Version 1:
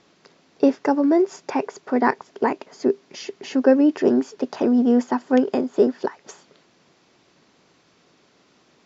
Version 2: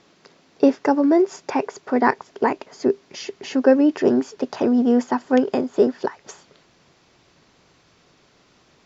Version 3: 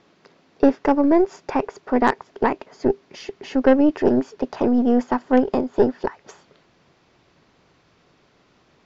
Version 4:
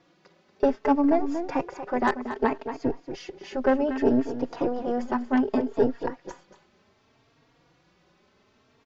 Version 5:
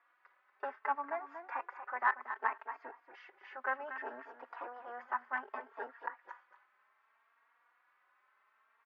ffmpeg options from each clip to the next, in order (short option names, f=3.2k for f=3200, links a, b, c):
-af "asubboost=boost=3.5:cutoff=110,volume=2dB"
-af "aemphasis=mode=reproduction:type=50fm,aeval=exprs='0.891*(cos(1*acos(clip(val(0)/0.891,-1,1)))-cos(1*PI/2))+0.0708*(cos(6*acos(clip(val(0)/0.891,-1,1)))-cos(6*PI/2))':c=same,volume=-1dB"
-filter_complex "[0:a]asplit=2[a][b];[b]adelay=234,lowpass=f=4.5k:p=1,volume=-10dB,asplit=2[c][d];[d]adelay=234,lowpass=f=4.5k:p=1,volume=0.16[e];[a][c][e]amix=inputs=3:normalize=0,asplit=2[f][g];[g]adelay=3.7,afreqshift=0.65[h];[f][h]amix=inputs=2:normalize=1,volume=-2dB"
-af "asuperpass=centerf=1400:order=4:qfactor=1.4,volume=-1.5dB"